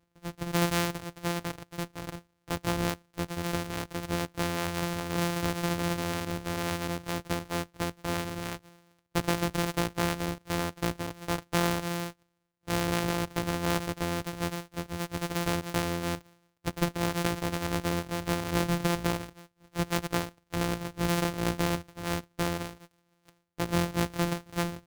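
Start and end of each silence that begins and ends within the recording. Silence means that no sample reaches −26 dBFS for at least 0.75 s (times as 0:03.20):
0:22.67–0:23.60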